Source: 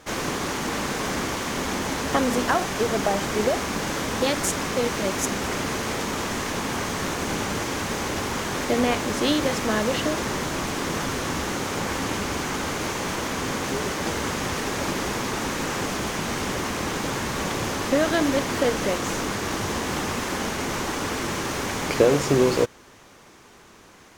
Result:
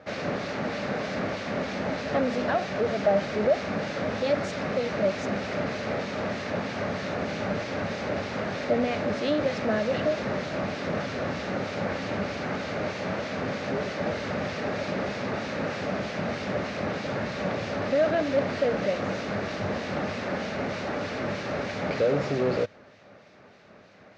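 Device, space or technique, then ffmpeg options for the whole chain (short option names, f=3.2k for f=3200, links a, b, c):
guitar amplifier with harmonic tremolo: -filter_complex "[0:a]acrossover=split=2100[a][b];[a]aeval=exprs='val(0)*(1-0.5/2+0.5/2*cos(2*PI*3.2*n/s))':c=same[c];[b]aeval=exprs='val(0)*(1-0.5/2-0.5/2*cos(2*PI*3.2*n/s))':c=same[d];[c][d]amix=inputs=2:normalize=0,asoftclip=type=tanh:threshold=-20dB,highpass=100,equalizer=f=100:t=q:w=4:g=5,equalizer=f=190:t=q:w=4:g=4,equalizer=f=340:t=q:w=4:g=-5,equalizer=f=600:t=q:w=4:g=10,equalizer=f=1k:t=q:w=4:g=-8,equalizer=f=3.2k:t=q:w=4:g=-7,lowpass=f=4.3k:w=0.5412,lowpass=f=4.3k:w=1.3066"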